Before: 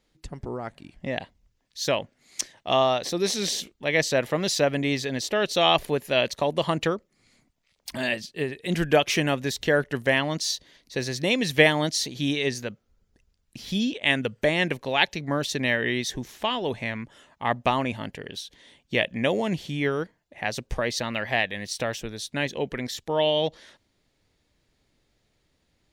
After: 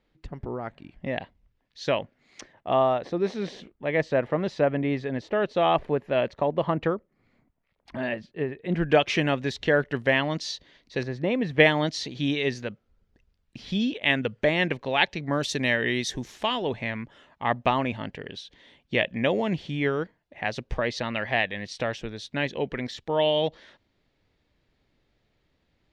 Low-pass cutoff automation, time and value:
2.9 kHz
from 2.40 s 1.6 kHz
from 8.90 s 3.7 kHz
from 11.03 s 1.5 kHz
from 11.60 s 3.7 kHz
from 15.33 s 8.4 kHz
from 16.62 s 3.7 kHz

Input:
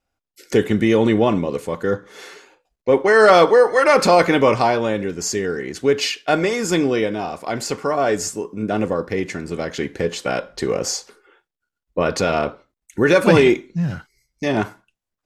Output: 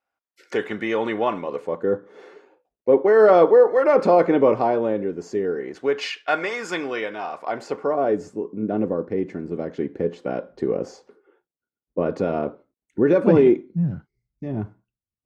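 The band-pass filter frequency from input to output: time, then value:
band-pass filter, Q 0.86
1.43 s 1.2 kHz
1.83 s 400 Hz
5.44 s 400 Hz
6.15 s 1.4 kHz
7.20 s 1.4 kHz
8.19 s 300 Hz
13.53 s 300 Hz
14.44 s 100 Hz

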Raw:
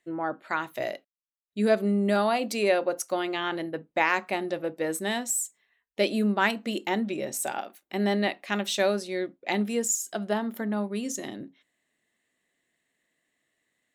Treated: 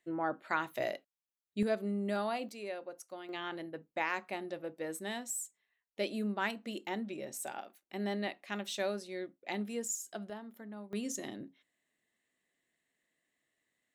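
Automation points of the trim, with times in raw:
-4 dB
from 1.63 s -10.5 dB
from 2.49 s -18 dB
from 3.29 s -10.5 dB
from 10.30 s -17.5 dB
from 10.93 s -6 dB

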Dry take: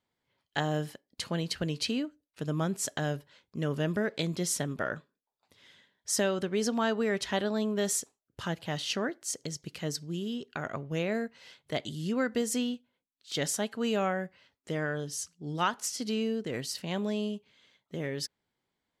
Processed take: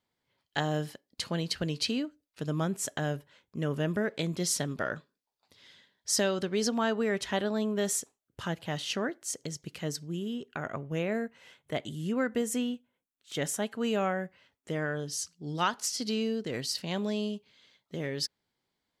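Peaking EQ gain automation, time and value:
peaking EQ 4.6 kHz 0.65 oct
+2.5 dB
from 2.65 s -5 dB
from 4.40 s +6 dB
from 6.69 s -3 dB
from 10.08 s -10.5 dB
from 13.62 s -4.5 dB
from 15.08 s +5.5 dB

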